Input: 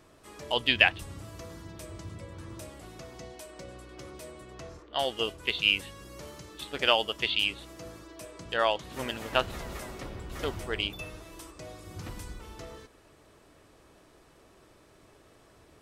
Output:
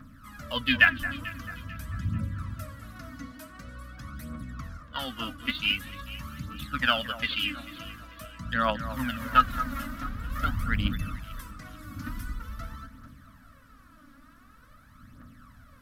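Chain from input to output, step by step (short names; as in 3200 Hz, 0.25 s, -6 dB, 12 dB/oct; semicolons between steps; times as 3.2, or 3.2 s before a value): phaser 0.46 Hz, delay 3.7 ms, feedback 66%; EQ curve 170 Hz 0 dB, 260 Hz +8 dB, 370 Hz -30 dB, 540 Hz -12 dB, 830 Hz -17 dB, 1300 Hz +5 dB, 2500 Hz -10 dB, 4000 Hz -9 dB, 8300 Hz -13 dB, 13000 Hz -1 dB; on a send: echo with dull and thin repeats by turns 0.221 s, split 1900 Hz, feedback 61%, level -12 dB; on the sum: gain +4.5 dB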